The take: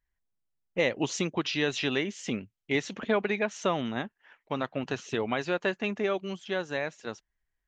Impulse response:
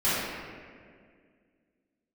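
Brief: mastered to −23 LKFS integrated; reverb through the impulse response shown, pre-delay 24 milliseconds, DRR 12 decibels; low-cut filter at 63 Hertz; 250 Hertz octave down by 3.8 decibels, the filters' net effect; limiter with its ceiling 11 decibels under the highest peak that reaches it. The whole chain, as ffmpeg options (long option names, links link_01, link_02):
-filter_complex "[0:a]highpass=63,equalizer=frequency=250:width_type=o:gain=-5,alimiter=level_in=1dB:limit=-24dB:level=0:latency=1,volume=-1dB,asplit=2[link_01][link_02];[1:a]atrim=start_sample=2205,adelay=24[link_03];[link_02][link_03]afir=irnorm=-1:irlink=0,volume=-26.5dB[link_04];[link_01][link_04]amix=inputs=2:normalize=0,volume=14dB"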